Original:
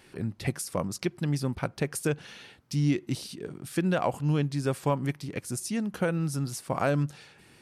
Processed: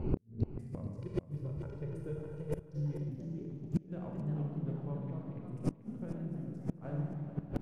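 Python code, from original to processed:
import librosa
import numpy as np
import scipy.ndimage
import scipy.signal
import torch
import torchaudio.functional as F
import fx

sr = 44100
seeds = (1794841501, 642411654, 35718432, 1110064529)

y = fx.wiener(x, sr, points=25)
y = fx.recorder_agc(y, sr, target_db=-24.0, rise_db_per_s=32.0, max_gain_db=30)
y = fx.tilt_eq(y, sr, slope=-4.5)
y = fx.rev_schroeder(y, sr, rt60_s=2.0, comb_ms=27, drr_db=-0.5)
y = fx.echo_pitch(y, sr, ms=782, semitones=2, count=3, db_per_echo=-6.0)
y = fx.gate_flip(y, sr, shuts_db=-13.0, range_db=-37)
y = fx.comb(y, sr, ms=2.1, depth=0.85, at=(0.97, 3.09))
y = fx.gate_flip(y, sr, shuts_db=-32.0, range_db=-30)
y = y + 10.0 ** (-12.0 / 20.0) * np.pad(y, (int(435 * sr / 1000.0), 0))[:len(y)]
y = y * librosa.db_to_amplitude(11.5)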